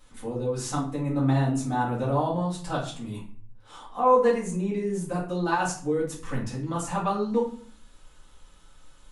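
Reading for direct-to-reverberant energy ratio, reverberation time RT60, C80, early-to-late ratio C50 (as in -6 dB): -7.0 dB, 0.50 s, 11.5 dB, 7.0 dB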